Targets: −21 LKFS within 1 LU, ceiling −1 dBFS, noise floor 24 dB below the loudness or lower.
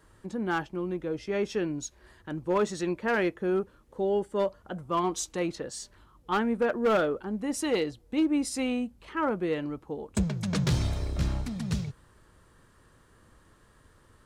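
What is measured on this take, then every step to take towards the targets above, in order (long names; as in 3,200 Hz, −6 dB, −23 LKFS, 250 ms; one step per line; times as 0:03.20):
share of clipped samples 0.7%; peaks flattened at −19.5 dBFS; integrated loudness −30.0 LKFS; sample peak −19.5 dBFS; target loudness −21.0 LKFS
→ clipped peaks rebuilt −19.5 dBFS
level +9 dB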